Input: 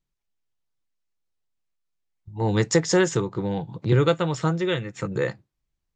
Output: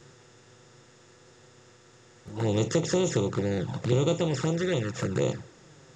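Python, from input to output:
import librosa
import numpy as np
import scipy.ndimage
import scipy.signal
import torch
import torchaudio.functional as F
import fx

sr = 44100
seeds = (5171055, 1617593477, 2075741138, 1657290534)

y = fx.bin_compress(x, sr, power=0.4)
y = fx.env_flanger(y, sr, rest_ms=9.4, full_db=-13.5)
y = y * librosa.db_to_amplitude(-7.5)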